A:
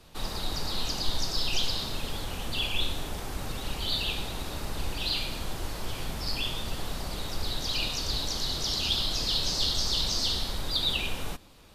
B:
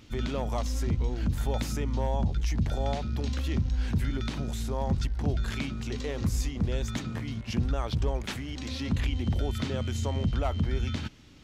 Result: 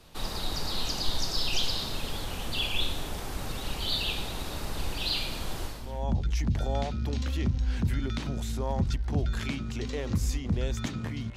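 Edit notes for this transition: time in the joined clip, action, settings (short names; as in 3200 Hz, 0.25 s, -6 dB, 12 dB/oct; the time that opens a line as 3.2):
A
5.87 switch to B from 1.98 s, crossfade 0.50 s quadratic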